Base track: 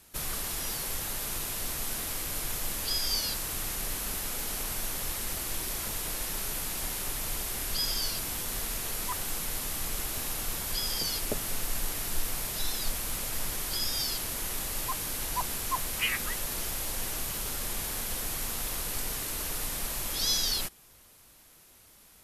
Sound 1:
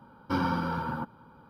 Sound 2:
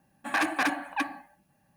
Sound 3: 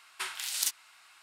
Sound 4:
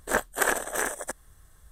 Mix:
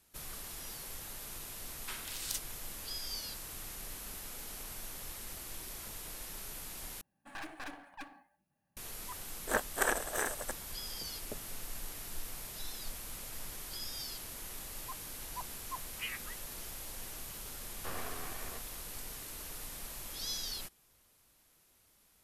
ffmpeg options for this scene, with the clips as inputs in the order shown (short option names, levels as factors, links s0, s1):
-filter_complex "[0:a]volume=0.282[s0];[2:a]aeval=exprs='clip(val(0),-1,0.00944)':c=same[s1];[1:a]aeval=exprs='abs(val(0))':c=same[s2];[s0]asplit=2[s3][s4];[s3]atrim=end=7.014[s5];[s1]atrim=end=1.76,asetpts=PTS-STARTPTS,volume=0.188[s6];[s4]atrim=start=8.766[s7];[3:a]atrim=end=1.22,asetpts=PTS-STARTPTS,volume=0.376,afade=t=in:d=0.004:c=hsin,afade=t=out:st=1.216:d=0.004:c=hsin,adelay=1680[s8];[4:a]atrim=end=1.71,asetpts=PTS-STARTPTS,volume=0.473,afade=t=in:d=0.004:c=hsin,afade=t=out:st=1.706:d=0.004:c=hsin,adelay=9400[s9];[s2]atrim=end=1.49,asetpts=PTS-STARTPTS,volume=0.266,afade=t=in:d=0.004:c=hsin,afade=t=out:st=1.486:d=0.004:c=hsin,adelay=17540[s10];[s5][s6]acrossfade=d=0.004:c1=hsin:c2=hsin[s11];[s11][s7]acrossfade=d=0.004:c1=hsin:c2=hsin[s12];[s12][s8][s9][s10]amix=inputs=4:normalize=0"